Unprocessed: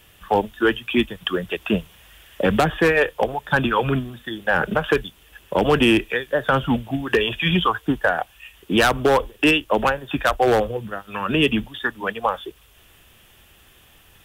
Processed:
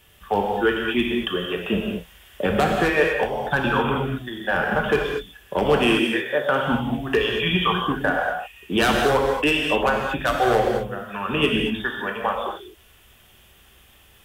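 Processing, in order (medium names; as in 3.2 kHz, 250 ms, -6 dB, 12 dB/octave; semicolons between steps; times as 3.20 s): 5.76–6.67 s: Bessel high-pass 180 Hz; reverberation, pre-delay 3 ms, DRR -0.5 dB; trim -4 dB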